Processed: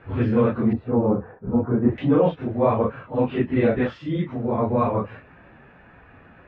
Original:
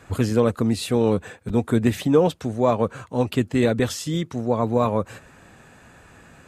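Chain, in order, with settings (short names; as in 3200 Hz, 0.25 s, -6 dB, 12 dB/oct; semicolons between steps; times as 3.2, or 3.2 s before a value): phase scrambler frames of 0.1 s; LPF 2700 Hz 24 dB/oct, from 0.73 s 1300 Hz, from 1.98 s 2600 Hz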